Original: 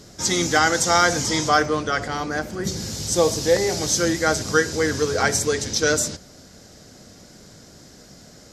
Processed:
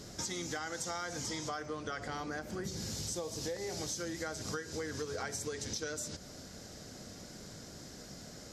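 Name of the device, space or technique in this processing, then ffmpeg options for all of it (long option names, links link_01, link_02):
serial compression, peaks first: -af "acompressor=threshold=-29dB:ratio=4,acompressor=threshold=-35dB:ratio=2.5,volume=-3dB"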